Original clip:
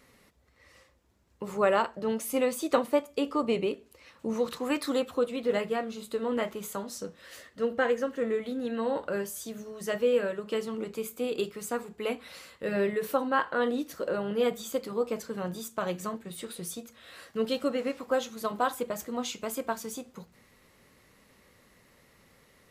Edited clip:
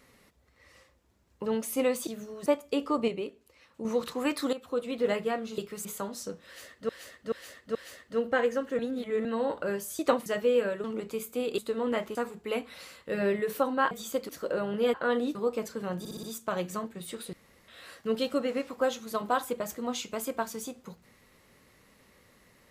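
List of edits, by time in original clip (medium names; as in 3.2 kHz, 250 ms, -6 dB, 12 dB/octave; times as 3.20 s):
1.46–2.03 s: delete
2.64–2.91 s: swap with 9.45–9.84 s
3.53–4.30 s: gain -5.5 dB
4.98–5.38 s: fade in, from -13.5 dB
6.03–6.60 s: swap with 11.42–11.69 s
7.21–7.64 s: loop, 4 plays
8.25–8.71 s: reverse
10.42–10.68 s: delete
13.45–13.86 s: swap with 14.51–14.89 s
15.53 s: stutter 0.06 s, 5 plays
16.63–16.98 s: room tone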